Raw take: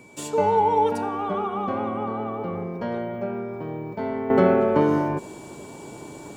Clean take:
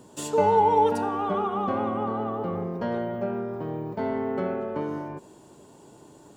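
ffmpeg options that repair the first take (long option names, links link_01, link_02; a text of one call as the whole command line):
ffmpeg -i in.wav -af "bandreject=frequency=2300:width=30,asetnsamples=nb_out_samples=441:pad=0,asendcmd='4.3 volume volume -11dB',volume=0dB" out.wav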